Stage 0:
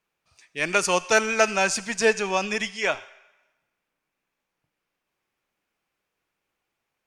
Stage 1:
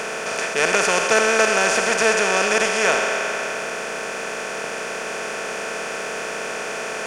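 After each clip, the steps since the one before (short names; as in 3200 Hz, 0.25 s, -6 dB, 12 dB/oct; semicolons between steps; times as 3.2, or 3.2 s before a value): per-bin compression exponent 0.2; gain -3.5 dB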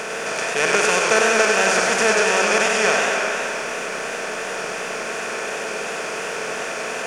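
warbling echo 97 ms, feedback 60%, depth 104 cents, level -4.5 dB; gain -1 dB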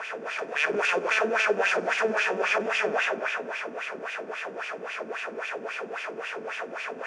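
wah 3.7 Hz 240–2800 Hz, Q 2.5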